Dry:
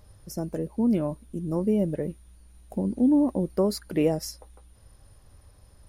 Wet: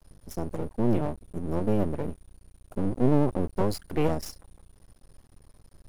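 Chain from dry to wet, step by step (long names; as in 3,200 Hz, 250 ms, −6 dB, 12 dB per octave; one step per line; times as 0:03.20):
sub-octave generator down 1 octave, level +2 dB
half-wave rectification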